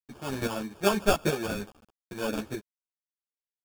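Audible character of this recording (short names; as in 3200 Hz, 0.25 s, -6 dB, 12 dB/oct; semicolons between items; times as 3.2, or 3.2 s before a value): a quantiser's noise floor 8-bit, dither none; chopped level 2.4 Hz, depth 65%, duty 10%; aliases and images of a low sample rate 2000 Hz, jitter 0%; a shimmering, thickened sound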